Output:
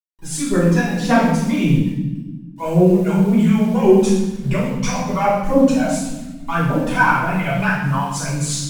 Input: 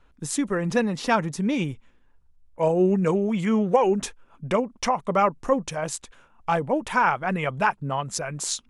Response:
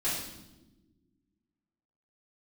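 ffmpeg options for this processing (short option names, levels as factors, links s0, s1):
-filter_complex "[0:a]acrusher=bits=7:mix=0:aa=0.000001,aphaser=in_gain=1:out_gain=1:delay=1.5:decay=0.73:speed=1.8:type=triangular[s0];[1:a]atrim=start_sample=2205,asetrate=39690,aresample=44100[s1];[s0][s1]afir=irnorm=-1:irlink=0,volume=0.501"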